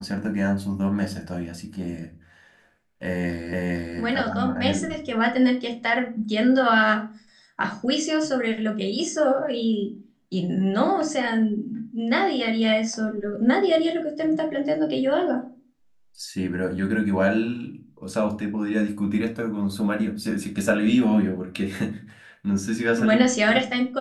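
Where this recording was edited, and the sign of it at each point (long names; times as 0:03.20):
0:03.53: the same again, the last 0.46 s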